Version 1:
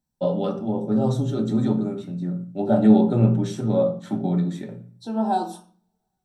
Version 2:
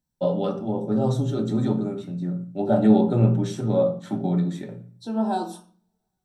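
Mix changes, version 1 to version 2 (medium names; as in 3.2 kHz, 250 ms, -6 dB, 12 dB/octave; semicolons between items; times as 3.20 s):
first voice: add peaking EQ 230 Hz -3.5 dB 0.26 oct; second voice: add peaking EQ 790 Hz -6 dB 0.25 oct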